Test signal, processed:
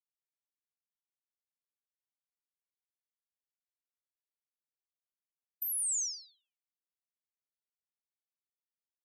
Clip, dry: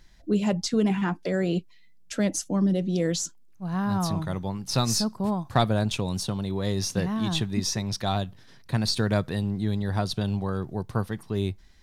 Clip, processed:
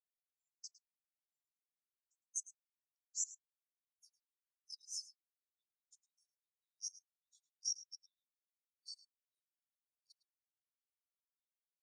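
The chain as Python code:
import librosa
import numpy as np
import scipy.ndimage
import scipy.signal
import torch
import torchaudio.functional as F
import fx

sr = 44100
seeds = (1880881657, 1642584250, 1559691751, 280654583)

p1 = fx.octave_divider(x, sr, octaves=1, level_db=-5.0)
p2 = fx.level_steps(p1, sr, step_db=15)
p3 = scipy.signal.sosfilt(scipy.signal.cheby2(4, 80, 1000.0, 'highpass', fs=sr, output='sos'), p2)
p4 = p3 + fx.echo_single(p3, sr, ms=107, db=-7.0, dry=0)
p5 = fx.spectral_expand(p4, sr, expansion=2.5)
y = p5 * 10.0 ** (-4.5 / 20.0)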